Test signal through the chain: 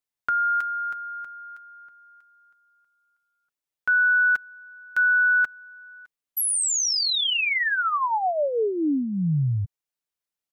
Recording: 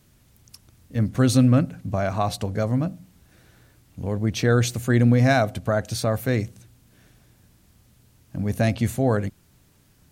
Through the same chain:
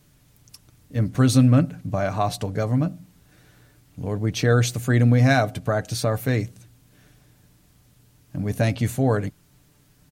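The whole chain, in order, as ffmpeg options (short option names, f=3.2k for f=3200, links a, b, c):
-af "aecho=1:1:6.8:0.38"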